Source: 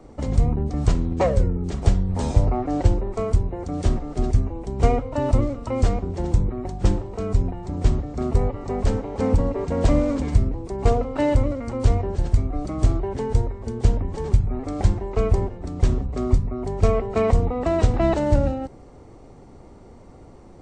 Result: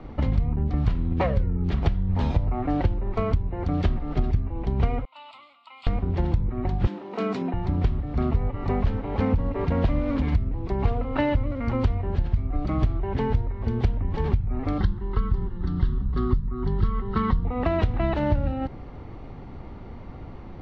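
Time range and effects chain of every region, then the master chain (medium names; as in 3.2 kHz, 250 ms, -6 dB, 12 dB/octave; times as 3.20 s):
5.05–5.87 s: high-pass 530 Hz + differentiator + static phaser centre 1.7 kHz, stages 6
6.87–7.54 s: steep high-pass 200 Hz + treble shelf 5.3 kHz +8 dB
14.78–17.45 s: static phaser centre 2.4 kHz, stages 6 + comb 5.4 ms, depth 38%
whole clip: low-pass 3.6 kHz 24 dB/octave; peaking EQ 470 Hz -8 dB 1.7 oct; compression 6:1, threshold -28 dBFS; trim +8.5 dB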